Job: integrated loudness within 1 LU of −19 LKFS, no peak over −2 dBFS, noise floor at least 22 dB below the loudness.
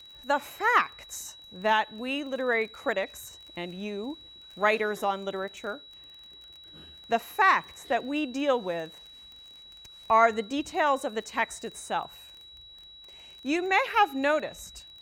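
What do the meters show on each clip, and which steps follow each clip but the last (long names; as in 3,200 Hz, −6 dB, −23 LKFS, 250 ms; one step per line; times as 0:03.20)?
crackle rate 21 per second; interfering tone 3,900 Hz; level of the tone −47 dBFS; integrated loudness −28.0 LKFS; sample peak −8.0 dBFS; target loudness −19.0 LKFS
→ click removal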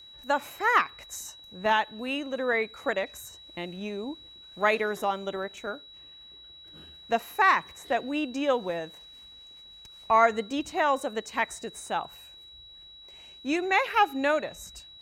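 crackle rate 0.13 per second; interfering tone 3,900 Hz; level of the tone −47 dBFS
→ notch filter 3,900 Hz, Q 30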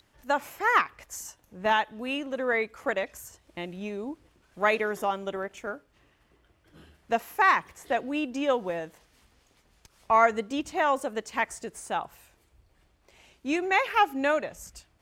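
interfering tone none found; integrated loudness −27.5 LKFS; sample peak −8.0 dBFS; target loudness −19.0 LKFS
→ level +8.5 dB
brickwall limiter −2 dBFS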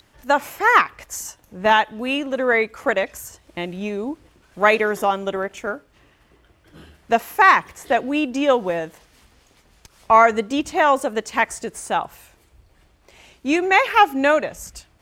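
integrated loudness −19.5 LKFS; sample peak −2.0 dBFS; background noise floor −58 dBFS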